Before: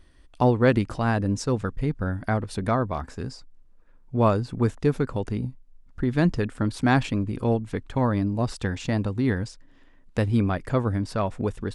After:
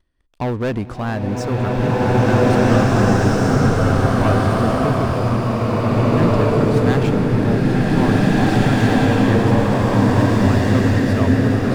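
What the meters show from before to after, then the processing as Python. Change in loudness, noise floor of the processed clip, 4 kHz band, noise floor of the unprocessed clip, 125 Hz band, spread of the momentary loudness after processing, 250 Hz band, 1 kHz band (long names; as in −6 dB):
+9.0 dB, −26 dBFS, +10.5 dB, −53 dBFS, +10.0 dB, 7 LU, +9.5 dB, +9.0 dB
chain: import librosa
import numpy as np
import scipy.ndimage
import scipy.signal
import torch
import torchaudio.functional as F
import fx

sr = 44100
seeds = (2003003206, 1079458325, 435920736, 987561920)

y = fx.high_shelf(x, sr, hz=5300.0, db=-7.0)
y = fx.leveller(y, sr, passes=3)
y = fx.rev_bloom(y, sr, seeds[0], attack_ms=2070, drr_db=-10.0)
y = y * 10.0 ** (-8.5 / 20.0)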